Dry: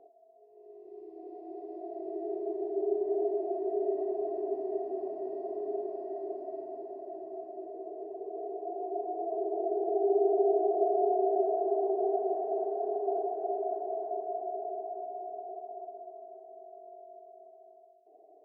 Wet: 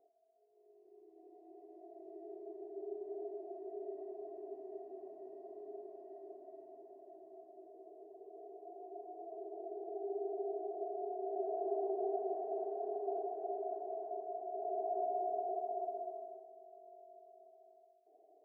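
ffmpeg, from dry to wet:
ffmpeg -i in.wav -af "volume=3dB,afade=type=in:start_time=11.19:duration=0.49:silence=0.473151,afade=type=in:start_time=14.49:duration=0.55:silence=0.298538,afade=type=out:start_time=16.02:duration=0.5:silence=0.298538" out.wav

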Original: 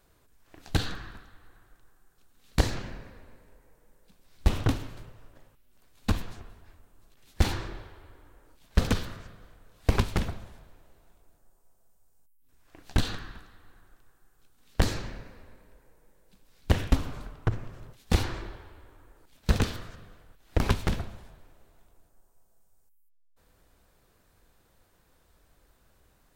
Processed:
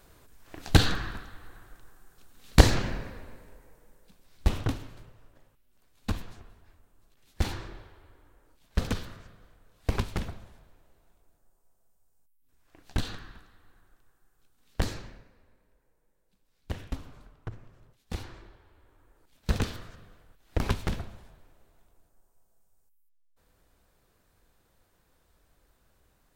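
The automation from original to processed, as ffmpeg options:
ffmpeg -i in.wav -af "volume=16.5dB,afade=type=out:start_time=2.95:duration=1.77:silence=0.251189,afade=type=out:start_time=14.83:duration=0.45:silence=0.421697,afade=type=in:start_time=18.6:duration=0.99:silence=0.354813" out.wav

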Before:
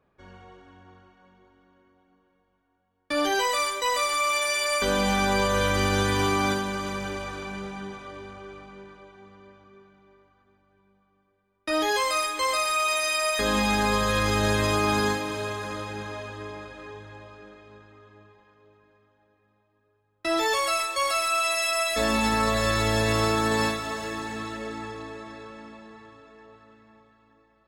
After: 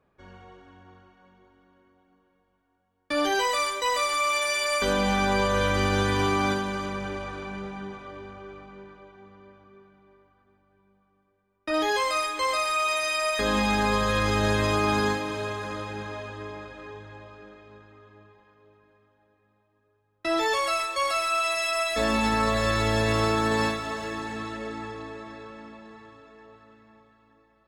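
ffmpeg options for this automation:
ffmpeg -i in.wav -af "asetnsamples=nb_out_samples=441:pad=0,asendcmd='4.93 lowpass f 4600;6.86 lowpass f 2700;11.74 lowpass f 5100;25.85 lowpass f 9100',lowpass=frequency=8500:poles=1" out.wav

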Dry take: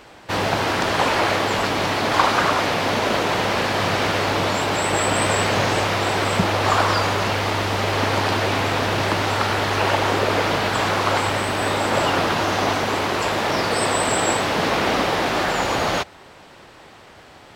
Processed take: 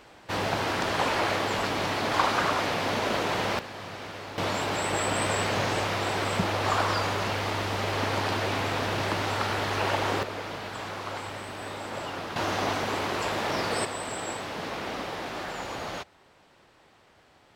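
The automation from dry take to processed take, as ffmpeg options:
ffmpeg -i in.wav -af "asetnsamples=nb_out_samples=441:pad=0,asendcmd='3.59 volume volume -18.5dB;4.38 volume volume -7.5dB;10.23 volume volume -15.5dB;12.36 volume volume -7.5dB;13.85 volume volume -14dB',volume=-7dB" out.wav

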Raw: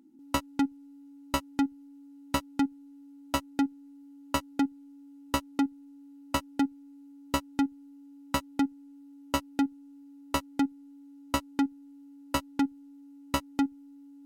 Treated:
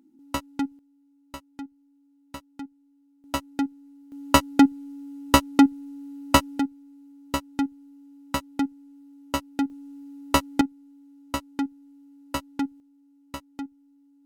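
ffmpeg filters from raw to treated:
ffmpeg -i in.wav -af "asetnsamples=nb_out_samples=441:pad=0,asendcmd='0.79 volume volume -11dB;3.24 volume volume 1dB;4.12 volume volume 11.5dB;6.59 volume volume 1.5dB;9.7 volume volume 8.5dB;10.61 volume volume -0.5dB;12.8 volume volume -8dB',volume=-0.5dB" out.wav

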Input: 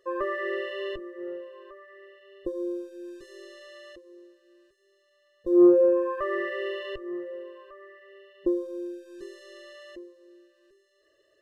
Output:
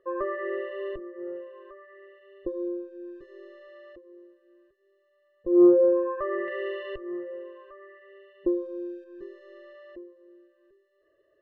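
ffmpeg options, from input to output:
ffmpeg -i in.wav -af "asetnsamples=nb_out_samples=441:pad=0,asendcmd='1.36 lowpass f 2100;2.68 lowpass f 1500;6.48 lowpass f 2400;9.04 lowpass f 1500',lowpass=1500" out.wav

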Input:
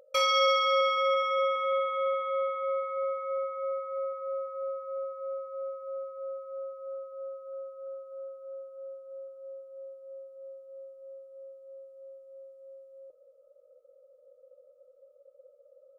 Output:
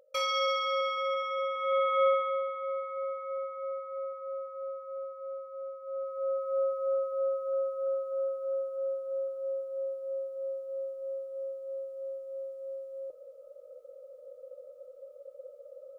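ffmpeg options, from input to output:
ffmpeg -i in.wav -af "volume=18dB,afade=type=in:start_time=1.55:duration=0.48:silence=0.316228,afade=type=out:start_time=2.03:duration=0.4:silence=0.375837,afade=type=in:start_time=5.82:duration=0.79:silence=0.223872" out.wav

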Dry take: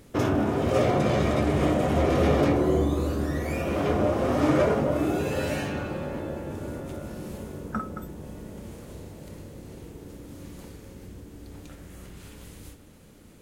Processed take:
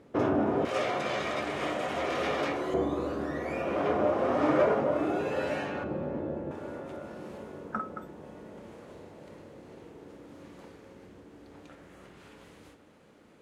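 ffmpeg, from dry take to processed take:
ffmpeg -i in.wav -af "asetnsamples=nb_out_samples=441:pad=0,asendcmd='0.65 bandpass f 2300;2.74 bandpass f 910;5.84 bandpass f 350;6.51 bandpass f 940',bandpass=frequency=590:width_type=q:width=0.52:csg=0" out.wav

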